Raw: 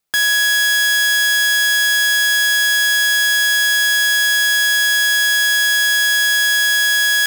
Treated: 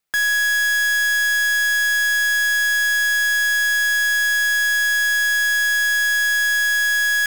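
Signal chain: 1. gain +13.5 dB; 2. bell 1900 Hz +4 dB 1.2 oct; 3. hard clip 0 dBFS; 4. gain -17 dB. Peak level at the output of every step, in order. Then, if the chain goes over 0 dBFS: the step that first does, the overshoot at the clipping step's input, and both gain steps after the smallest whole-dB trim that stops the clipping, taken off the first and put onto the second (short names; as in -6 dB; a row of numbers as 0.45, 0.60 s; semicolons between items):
+3.5, +5.0, 0.0, -17.0 dBFS; step 1, 5.0 dB; step 1 +8.5 dB, step 4 -12 dB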